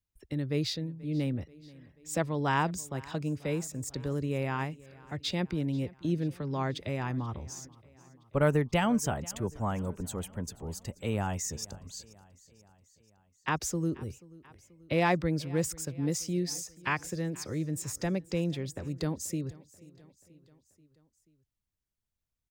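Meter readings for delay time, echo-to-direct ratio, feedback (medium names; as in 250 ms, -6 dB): 484 ms, -20.0 dB, 59%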